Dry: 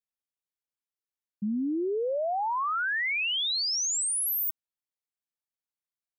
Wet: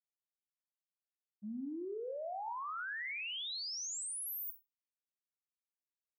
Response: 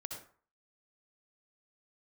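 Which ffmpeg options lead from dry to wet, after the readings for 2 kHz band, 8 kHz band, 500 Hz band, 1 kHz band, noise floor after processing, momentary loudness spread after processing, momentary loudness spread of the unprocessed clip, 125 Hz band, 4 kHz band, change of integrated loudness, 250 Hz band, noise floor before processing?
-12.5 dB, -13.0 dB, -12.5 dB, -12.5 dB, under -85 dBFS, 6 LU, 5 LU, n/a, -13.0 dB, -12.5 dB, -13.0 dB, under -85 dBFS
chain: -filter_complex "[0:a]agate=range=-33dB:threshold=-16dB:ratio=3:detection=peak,asplit=2[a][b];[1:a]atrim=start_sample=2205,asetrate=61740,aresample=44100[c];[b][c]afir=irnorm=-1:irlink=0,volume=1.5dB[d];[a][d]amix=inputs=2:normalize=0,volume=4.5dB"

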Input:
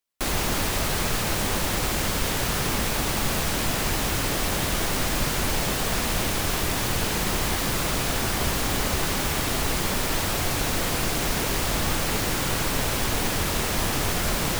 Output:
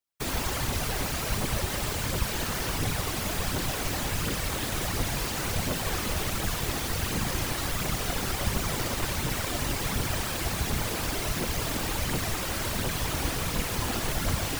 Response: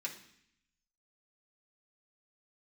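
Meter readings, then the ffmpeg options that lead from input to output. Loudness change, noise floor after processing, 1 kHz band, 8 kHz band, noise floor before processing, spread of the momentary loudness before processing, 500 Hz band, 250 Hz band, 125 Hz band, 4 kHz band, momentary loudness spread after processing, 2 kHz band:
-4.5 dB, -32 dBFS, -5.0 dB, -5.0 dB, -26 dBFS, 0 LU, -5.0 dB, -4.5 dB, -2.5 dB, -5.0 dB, 1 LU, -5.0 dB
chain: -af "aphaser=in_gain=1:out_gain=1:delay=4.1:decay=0.44:speed=1.4:type=triangular,afftfilt=real='hypot(re,im)*cos(2*PI*random(0))':imag='hypot(re,im)*sin(2*PI*random(1))':win_size=512:overlap=0.75"

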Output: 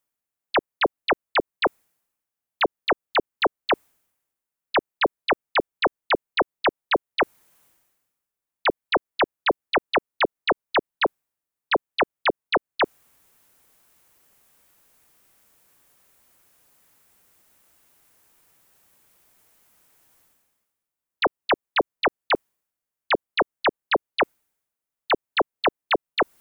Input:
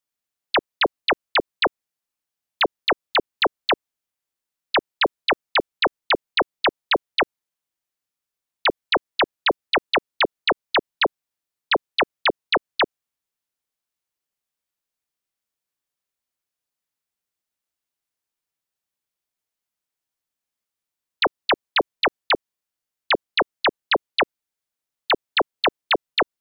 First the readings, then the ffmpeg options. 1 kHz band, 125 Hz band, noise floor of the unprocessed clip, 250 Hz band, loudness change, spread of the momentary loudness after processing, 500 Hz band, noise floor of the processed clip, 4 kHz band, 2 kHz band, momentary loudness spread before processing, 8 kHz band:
-0.5 dB, 0.0 dB, under -85 dBFS, 0.0 dB, -2.5 dB, 3 LU, 0.0 dB, under -85 dBFS, -6.5 dB, -2.5 dB, 3 LU, n/a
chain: -af "equalizer=f=4.3k:w=0.78:g=-7.5,areverse,acompressor=mode=upward:threshold=-39dB:ratio=2.5,areverse"

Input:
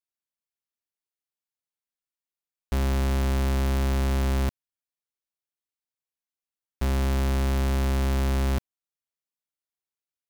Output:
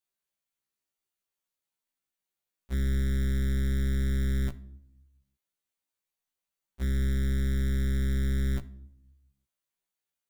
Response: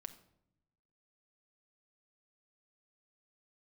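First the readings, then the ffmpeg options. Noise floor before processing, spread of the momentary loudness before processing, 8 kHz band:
under -85 dBFS, 4 LU, -7.5 dB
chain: -filter_complex "[0:a]bandreject=f=5.2k:w=12,alimiter=level_in=9dB:limit=-24dB:level=0:latency=1,volume=-9dB,asplit=2[a][b];[1:a]atrim=start_sample=2205[c];[b][c]afir=irnorm=-1:irlink=0,volume=6dB[d];[a][d]amix=inputs=2:normalize=0,afftfilt=real='re*1.73*eq(mod(b,3),0)':imag='im*1.73*eq(mod(b,3),0)':win_size=2048:overlap=0.75"

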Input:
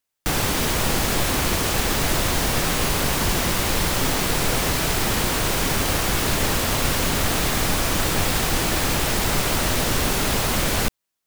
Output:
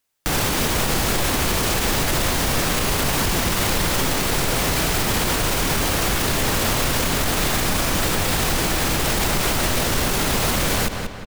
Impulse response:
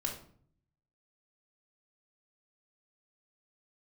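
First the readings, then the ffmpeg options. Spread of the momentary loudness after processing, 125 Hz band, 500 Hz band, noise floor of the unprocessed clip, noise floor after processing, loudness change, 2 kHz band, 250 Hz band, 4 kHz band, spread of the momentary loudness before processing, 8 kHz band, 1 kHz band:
1 LU, +1.0 dB, +1.0 dB, -80 dBFS, -26 dBFS, +1.0 dB, +1.0 dB, +1.0 dB, +1.0 dB, 0 LU, +1.0 dB, +1.0 dB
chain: -filter_complex "[0:a]asplit=2[a][b];[b]adelay=183,lowpass=f=4.6k:p=1,volume=-11.5dB,asplit=2[c][d];[d]adelay=183,lowpass=f=4.6k:p=1,volume=0.45,asplit=2[e][f];[f]adelay=183,lowpass=f=4.6k:p=1,volume=0.45,asplit=2[g][h];[h]adelay=183,lowpass=f=4.6k:p=1,volume=0.45,asplit=2[i][j];[j]adelay=183,lowpass=f=4.6k:p=1,volume=0.45[k];[c][e][g][i][k]amix=inputs=5:normalize=0[l];[a][l]amix=inputs=2:normalize=0,alimiter=limit=-17dB:level=0:latency=1,volume=6dB"

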